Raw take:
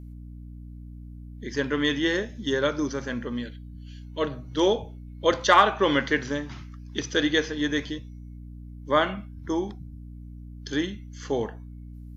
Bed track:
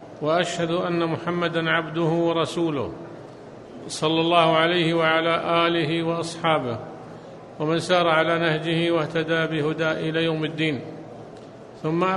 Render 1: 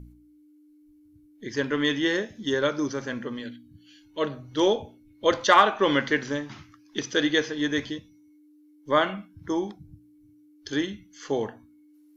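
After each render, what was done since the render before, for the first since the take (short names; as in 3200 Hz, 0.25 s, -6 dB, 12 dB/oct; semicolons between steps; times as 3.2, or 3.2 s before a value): de-hum 60 Hz, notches 4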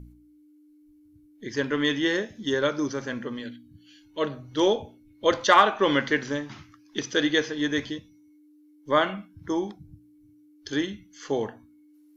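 nothing audible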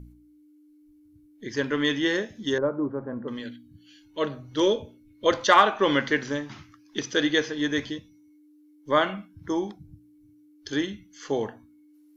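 2.58–3.28 LPF 1100 Hz 24 dB/oct; 4.6–5.26 Butterworth band-stop 760 Hz, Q 2.9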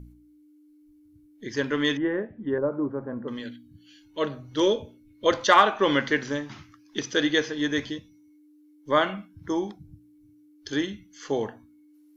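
1.97–2.72 Gaussian blur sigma 5.1 samples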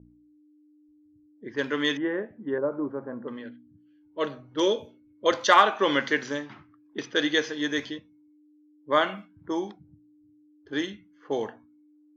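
HPF 280 Hz 6 dB/oct; low-pass opened by the level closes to 550 Hz, open at -24 dBFS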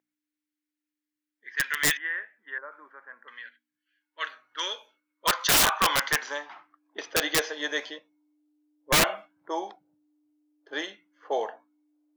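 high-pass sweep 1800 Hz -> 640 Hz, 3.99–7.13; wrapped overs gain 14.5 dB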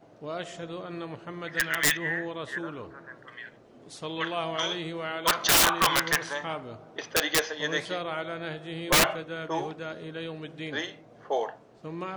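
add bed track -14 dB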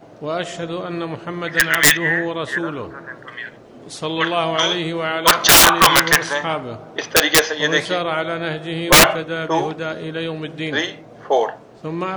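gain +11.5 dB; limiter -1 dBFS, peak gain reduction 1 dB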